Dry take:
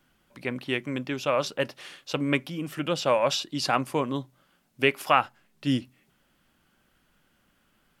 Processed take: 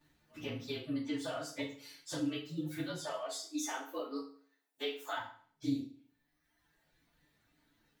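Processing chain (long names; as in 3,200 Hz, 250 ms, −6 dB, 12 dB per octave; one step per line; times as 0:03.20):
partials spread apart or drawn together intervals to 110%
reverb reduction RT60 1.3 s
0:03.02–0:05.17: high-pass filter 370 Hz 24 dB per octave
downward compressor 6 to 1, threshold −38 dBFS, peak gain reduction 16 dB
feedback delay network reverb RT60 0.5 s, low-frequency decay 1.05×, high-frequency decay 0.85×, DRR −3.5 dB
level −4 dB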